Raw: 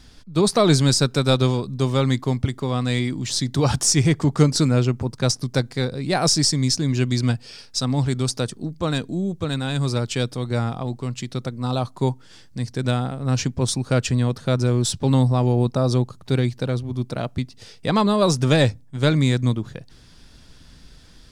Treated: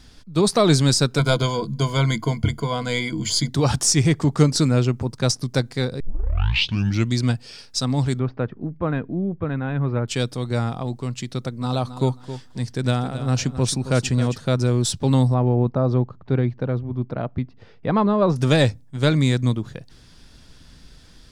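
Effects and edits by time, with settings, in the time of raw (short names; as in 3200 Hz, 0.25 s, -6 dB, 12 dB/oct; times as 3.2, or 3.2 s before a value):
1.18–3.49 ripple EQ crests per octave 1.8, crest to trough 16 dB
6 tape start 1.13 s
8.19–10.08 inverse Chebyshev low-pass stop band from 8400 Hz, stop band 70 dB
11.34–14.37 feedback echo 0.268 s, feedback 23%, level -12 dB
15.34–18.36 LPF 1700 Hz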